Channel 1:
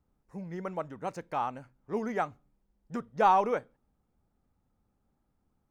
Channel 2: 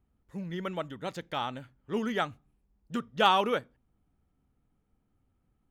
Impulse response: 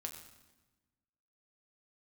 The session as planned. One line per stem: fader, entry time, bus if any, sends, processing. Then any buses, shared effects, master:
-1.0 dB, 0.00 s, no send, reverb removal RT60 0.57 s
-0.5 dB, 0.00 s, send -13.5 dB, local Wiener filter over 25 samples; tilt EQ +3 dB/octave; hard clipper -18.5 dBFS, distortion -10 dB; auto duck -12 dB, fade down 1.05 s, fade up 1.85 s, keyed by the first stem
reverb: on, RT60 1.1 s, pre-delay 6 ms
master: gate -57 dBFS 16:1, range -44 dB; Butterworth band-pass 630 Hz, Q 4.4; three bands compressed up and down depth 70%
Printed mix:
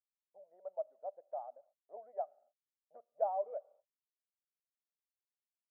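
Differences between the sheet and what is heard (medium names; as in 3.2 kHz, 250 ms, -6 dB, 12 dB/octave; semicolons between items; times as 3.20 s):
stem 2: polarity flipped; master: missing three bands compressed up and down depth 70%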